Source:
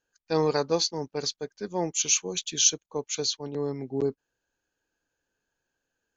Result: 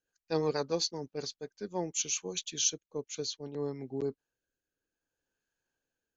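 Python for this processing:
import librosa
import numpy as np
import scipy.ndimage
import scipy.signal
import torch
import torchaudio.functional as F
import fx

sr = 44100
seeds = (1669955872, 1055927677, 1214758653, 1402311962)

y = fx.rotary_switch(x, sr, hz=8.0, then_hz=0.6, switch_at_s=1.45)
y = F.gain(torch.from_numpy(y), -4.5).numpy()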